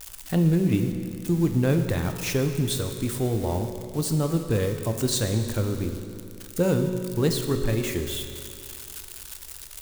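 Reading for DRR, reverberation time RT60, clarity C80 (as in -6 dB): 5.5 dB, 2.5 s, 8.0 dB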